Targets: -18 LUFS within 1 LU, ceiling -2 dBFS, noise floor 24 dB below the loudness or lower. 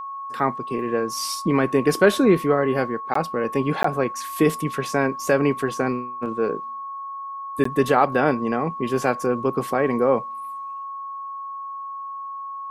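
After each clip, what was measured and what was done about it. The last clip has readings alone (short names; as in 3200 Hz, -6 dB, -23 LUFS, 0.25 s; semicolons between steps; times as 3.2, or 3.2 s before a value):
dropouts 3; longest dropout 14 ms; steady tone 1100 Hz; tone level -30 dBFS; loudness -23.0 LUFS; peak -3.0 dBFS; loudness target -18.0 LUFS
-> interpolate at 3.14/3.83/7.64, 14 ms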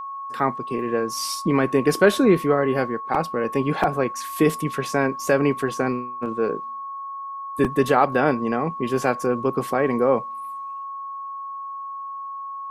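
dropouts 0; steady tone 1100 Hz; tone level -30 dBFS
-> notch 1100 Hz, Q 30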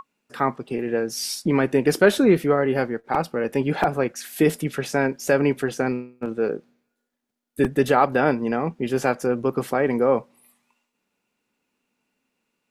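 steady tone none; loudness -22.5 LUFS; peak -3.5 dBFS; loudness target -18.0 LUFS
-> gain +4.5 dB; limiter -2 dBFS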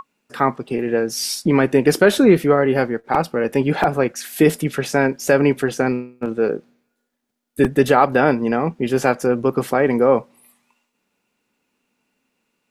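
loudness -18.0 LUFS; peak -2.0 dBFS; noise floor -74 dBFS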